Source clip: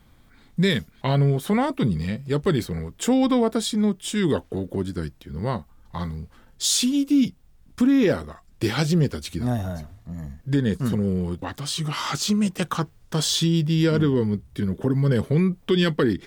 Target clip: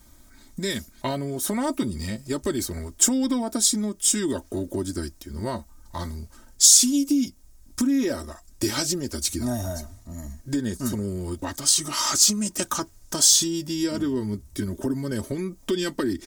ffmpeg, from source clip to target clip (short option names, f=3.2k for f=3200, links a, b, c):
-af "acompressor=threshold=-22dB:ratio=6,highshelf=f=4.5k:t=q:w=1.5:g=11,aecho=1:1:3.2:0.75,volume=-1dB"